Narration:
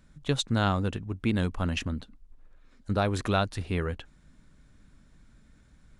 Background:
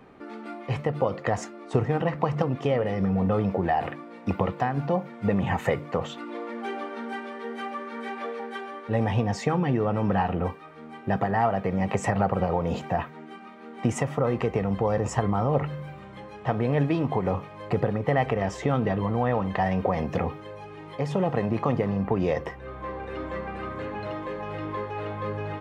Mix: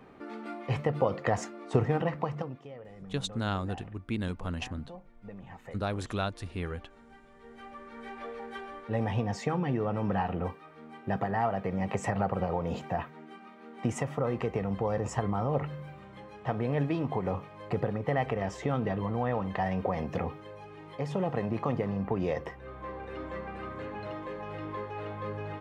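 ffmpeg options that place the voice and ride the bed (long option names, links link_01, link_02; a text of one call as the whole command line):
ffmpeg -i stem1.wav -i stem2.wav -filter_complex "[0:a]adelay=2850,volume=-6dB[link_01];[1:a]volume=14dB,afade=type=out:start_time=1.87:duration=0.78:silence=0.105925,afade=type=in:start_time=7.29:duration=1.3:silence=0.158489[link_02];[link_01][link_02]amix=inputs=2:normalize=0" out.wav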